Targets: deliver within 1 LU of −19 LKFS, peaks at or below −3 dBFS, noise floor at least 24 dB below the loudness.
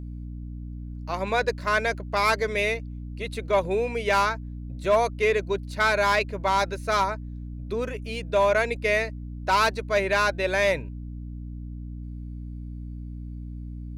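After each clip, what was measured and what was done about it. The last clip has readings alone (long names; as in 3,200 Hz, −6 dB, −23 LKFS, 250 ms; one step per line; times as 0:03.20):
share of clipped samples 0.3%; peaks flattened at −14.0 dBFS; mains hum 60 Hz; hum harmonics up to 300 Hz; level of the hum −33 dBFS; integrated loudness −25.0 LKFS; sample peak −14.0 dBFS; target loudness −19.0 LKFS
→ clipped peaks rebuilt −14 dBFS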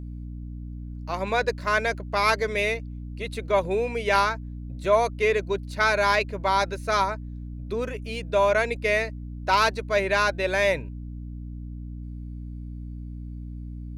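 share of clipped samples 0.0%; mains hum 60 Hz; hum harmonics up to 300 Hz; level of the hum −33 dBFS
→ mains-hum notches 60/120/180/240/300 Hz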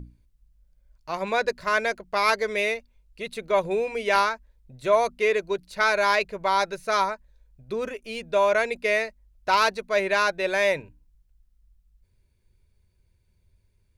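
mains hum none found; integrated loudness −24.5 LKFS; sample peak −7.0 dBFS; target loudness −19.0 LKFS
→ level +5.5 dB
brickwall limiter −3 dBFS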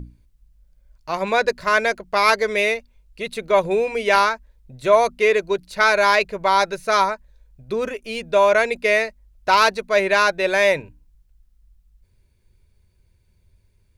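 integrated loudness −19.0 LKFS; sample peak −3.0 dBFS; background noise floor −62 dBFS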